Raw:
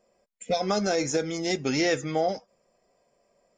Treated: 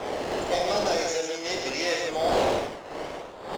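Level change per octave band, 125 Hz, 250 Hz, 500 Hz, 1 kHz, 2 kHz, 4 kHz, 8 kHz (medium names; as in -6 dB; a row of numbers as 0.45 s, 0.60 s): -5.5 dB, -4.5 dB, +2.0 dB, +4.0 dB, +2.0 dB, +3.0 dB, +0.5 dB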